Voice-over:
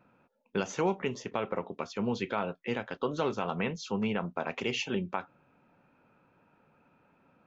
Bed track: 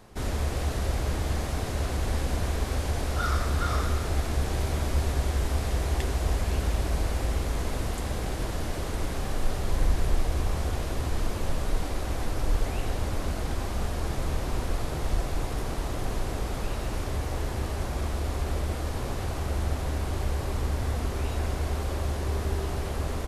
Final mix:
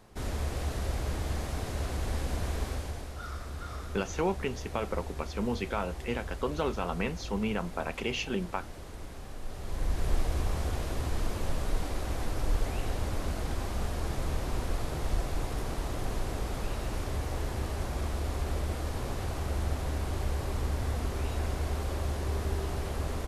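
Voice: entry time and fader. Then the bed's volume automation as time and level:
3.40 s, -0.5 dB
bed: 2.65 s -4.5 dB
3.14 s -13 dB
9.42 s -13 dB
10.13 s -3 dB

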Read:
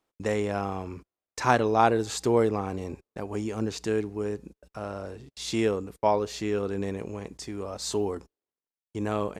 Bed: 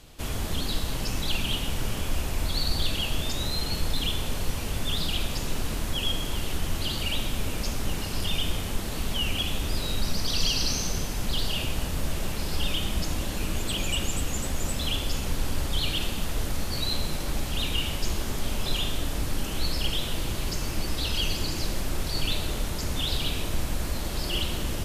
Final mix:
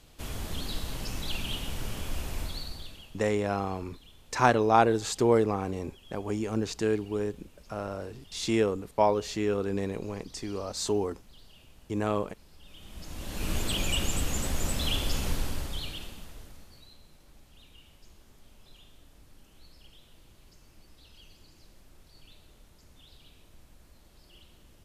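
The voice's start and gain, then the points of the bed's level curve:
2.95 s, 0.0 dB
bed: 2.40 s -6 dB
3.26 s -27 dB
12.61 s -27 dB
13.51 s -1 dB
15.29 s -1 dB
16.96 s -27.5 dB

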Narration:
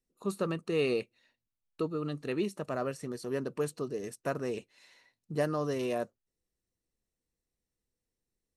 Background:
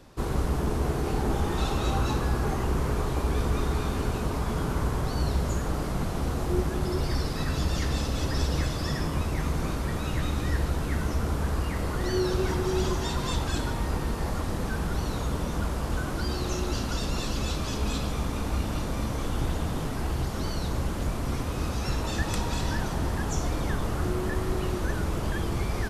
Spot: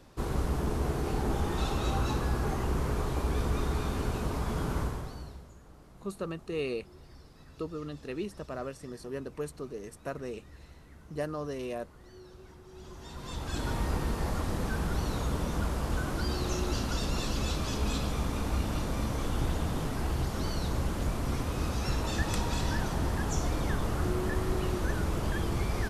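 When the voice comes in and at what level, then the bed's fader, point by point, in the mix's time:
5.80 s, -4.0 dB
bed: 4.80 s -3.5 dB
5.52 s -25 dB
12.67 s -25 dB
13.72 s -2 dB

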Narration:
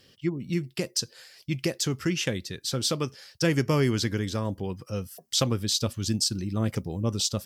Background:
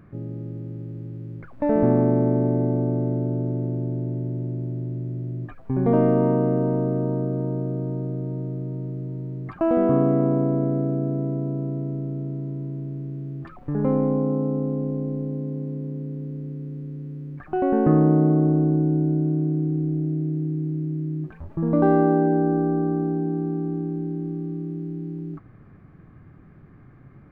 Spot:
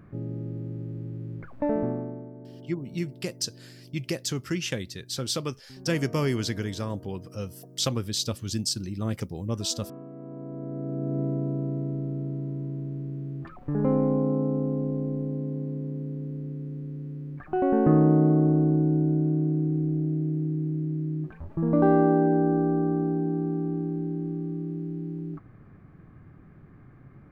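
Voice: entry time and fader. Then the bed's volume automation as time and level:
2.45 s, -2.5 dB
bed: 1.56 s -1 dB
2.33 s -23.5 dB
10.11 s -23.5 dB
11.20 s -2 dB

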